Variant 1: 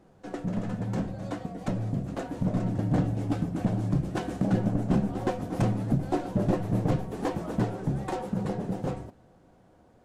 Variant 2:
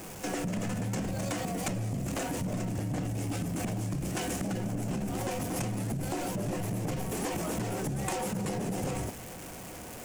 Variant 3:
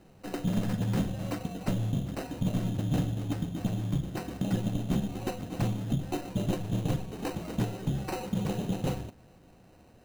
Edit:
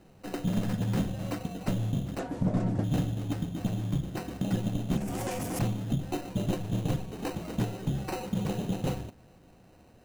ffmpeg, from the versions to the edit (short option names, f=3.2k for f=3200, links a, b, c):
-filter_complex "[2:a]asplit=3[a][b][c];[a]atrim=end=2.192[d];[0:a]atrim=start=2.188:end=2.842[e];[b]atrim=start=2.838:end=4.972[f];[1:a]atrim=start=4.968:end=5.592[g];[c]atrim=start=5.588[h];[d][e]acrossfade=d=0.004:c1=hsin:c2=hsin[i];[i][f]acrossfade=d=0.004:c1=hsin:c2=hsin[j];[j][g]acrossfade=d=0.004:c1=hsin:c2=hsin[k];[k][h]acrossfade=d=0.004:c1=hsin:c2=hsin"